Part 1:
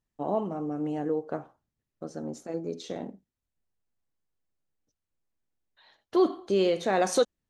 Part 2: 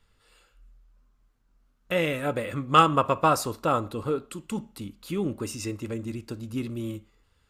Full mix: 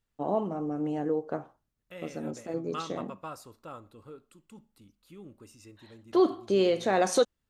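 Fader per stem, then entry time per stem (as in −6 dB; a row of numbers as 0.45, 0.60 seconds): 0.0, −19.5 decibels; 0.00, 0.00 seconds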